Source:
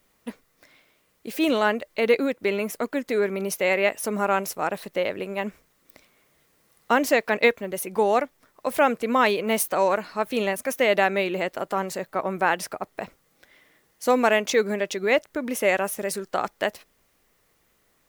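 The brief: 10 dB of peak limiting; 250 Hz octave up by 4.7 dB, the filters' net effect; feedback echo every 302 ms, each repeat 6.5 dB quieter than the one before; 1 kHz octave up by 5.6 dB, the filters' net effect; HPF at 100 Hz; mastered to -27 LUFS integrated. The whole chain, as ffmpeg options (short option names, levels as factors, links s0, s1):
-af "highpass=100,equalizer=f=250:t=o:g=5.5,equalizer=f=1000:t=o:g=7,alimiter=limit=0.266:level=0:latency=1,aecho=1:1:302|604|906|1208|1510|1812:0.473|0.222|0.105|0.0491|0.0231|0.0109,volume=0.668"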